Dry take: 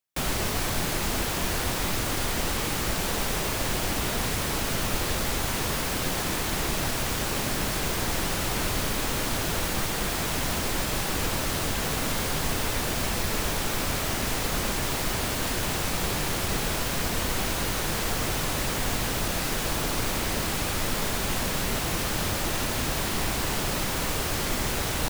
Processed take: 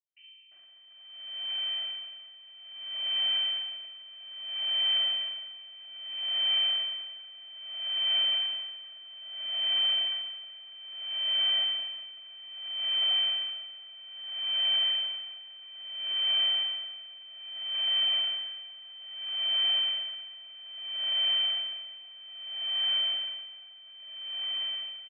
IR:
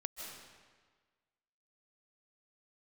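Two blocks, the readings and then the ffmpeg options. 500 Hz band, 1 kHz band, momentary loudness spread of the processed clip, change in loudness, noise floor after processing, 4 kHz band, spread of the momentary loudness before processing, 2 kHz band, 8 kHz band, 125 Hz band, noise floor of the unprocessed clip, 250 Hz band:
−22.5 dB, −20.5 dB, 19 LU, −0.5 dB, −51 dBFS, +6.5 dB, 0 LU, −12.0 dB, below −40 dB, below −40 dB, −29 dBFS, below −30 dB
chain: -filter_complex "[0:a]asplit=3[link_01][link_02][link_03];[link_01]bandpass=frequency=730:width_type=q:width=8,volume=0dB[link_04];[link_02]bandpass=frequency=1090:width_type=q:width=8,volume=-6dB[link_05];[link_03]bandpass=frequency=2440:width_type=q:width=8,volume=-9dB[link_06];[link_04][link_05][link_06]amix=inputs=3:normalize=0,tiltshelf=frequency=1200:gain=-6,aecho=1:1:2.5:1,dynaudnorm=framelen=280:gausssize=17:maxgain=7dB,aeval=exprs='max(val(0),0)':channel_layout=same,aemphasis=mode=reproduction:type=75fm,flanger=delay=8:depth=6.7:regen=-70:speed=1:shape=triangular,acrossover=split=680[link_07][link_08];[link_08]adelay=350[link_09];[link_07][link_09]amix=inputs=2:normalize=0,asplit=2[link_10][link_11];[1:a]atrim=start_sample=2205,adelay=46[link_12];[link_11][link_12]afir=irnorm=-1:irlink=0,volume=-1dB[link_13];[link_10][link_13]amix=inputs=2:normalize=0,lowpass=frequency=2600:width_type=q:width=0.5098,lowpass=frequency=2600:width_type=q:width=0.6013,lowpass=frequency=2600:width_type=q:width=0.9,lowpass=frequency=2600:width_type=q:width=2.563,afreqshift=-3100,aeval=exprs='val(0)*pow(10,-22*(0.5-0.5*cos(2*PI*0.61*n/s))/20)':channel_layout=same"

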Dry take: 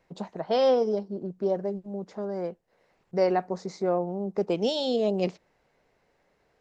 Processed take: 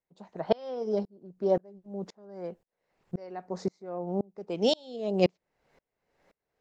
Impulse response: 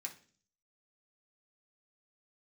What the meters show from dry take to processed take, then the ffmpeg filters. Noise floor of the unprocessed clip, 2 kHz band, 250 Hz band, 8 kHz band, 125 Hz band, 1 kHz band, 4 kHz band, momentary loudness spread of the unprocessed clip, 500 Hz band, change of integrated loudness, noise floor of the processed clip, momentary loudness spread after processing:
−70 dBFS, −3.0 dB, −3.0 dB, can't be measured, −1.5 dB, −6.5 dB, −2.0 dB, 12 LU, −4.5 dB, −4.0 dB, below −85 dBFS, 14 LU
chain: -af "aeval=exprs='val(0)*pow(10,-33*if(lt(mod(-1.9*n/s,1),2*abs(-1.9)/1000),1-mod(-1.9*n/s,1)/(2*abs(-1.9)/1000),(mod(-1.9*n/s,1)-2*abs(-1.9)/1000)/(1-2*abs(-1.9)/1000))/20)':channel_layout=same,volume=6dB"

